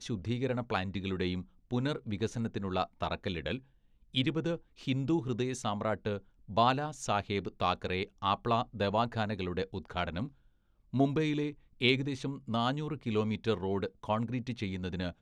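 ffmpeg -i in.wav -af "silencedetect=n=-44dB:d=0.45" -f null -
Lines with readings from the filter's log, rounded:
silence_start: 3.59
silence_end: 4.14 | silence_duration: 0.56
silence_start: 10.28
silence_end: 10.93 | silence_duration: 0.65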